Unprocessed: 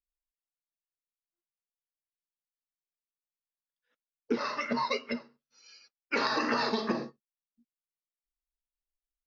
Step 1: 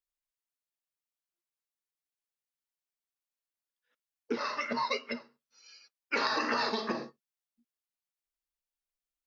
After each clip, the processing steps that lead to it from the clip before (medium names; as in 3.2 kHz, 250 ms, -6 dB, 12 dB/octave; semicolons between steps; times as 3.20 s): bass shelf 330 Hz -7.5 dB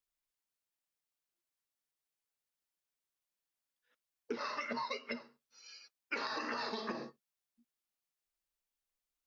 compression, threshold -37 dBFS, peak gain reduction 11 dB; trim +1 dB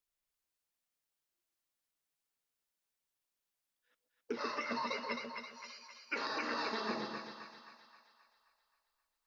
two-band feedback delay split 760 Hz, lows 135 ms, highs 264 ms, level -4.5 dB